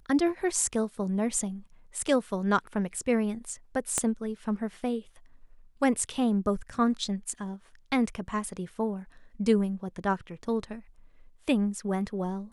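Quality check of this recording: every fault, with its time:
0:03.98: click −12 dBFS

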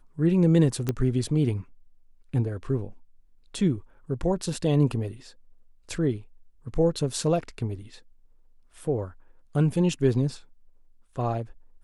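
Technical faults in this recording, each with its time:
0:00.89: click −13 dBFS

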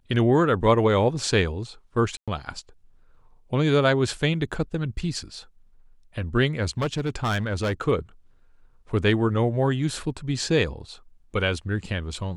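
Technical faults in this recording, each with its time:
0:02.17–0:02.28: drop-out 106 ms
0:06.78–0:07.81: clipping −20.5 dBFS

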